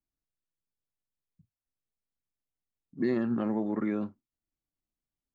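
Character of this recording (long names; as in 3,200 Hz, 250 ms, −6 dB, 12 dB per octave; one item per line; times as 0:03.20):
background noise floor −94 dBFS
spectral slope −5.5 dB per octave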